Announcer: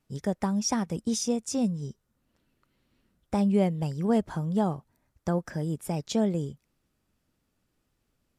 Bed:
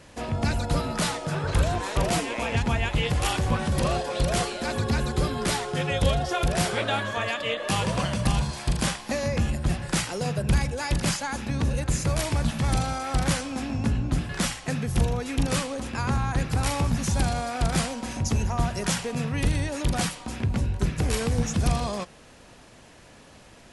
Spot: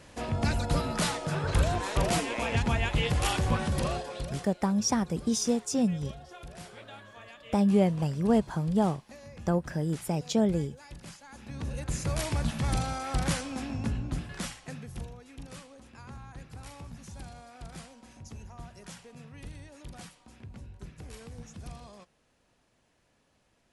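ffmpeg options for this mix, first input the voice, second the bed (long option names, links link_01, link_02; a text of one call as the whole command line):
ffmpeg -i stem1.wav -i stem2.wav -filter_complex "[0:a]adelay=4200,volume=0.5dB[link_01];[1:a]volume=14dB,afade=type=out:start_time=3.56:duration=0.89:silence=0.11885,afade=type=in:start_time=11.25:duration=0.98:silence=0.149624,afade=type=out:start_time=13.51:duration=1.65:silence=0.16788[link_02];[link_01][link_02]amix=inputs=2:normalize=0" out.wav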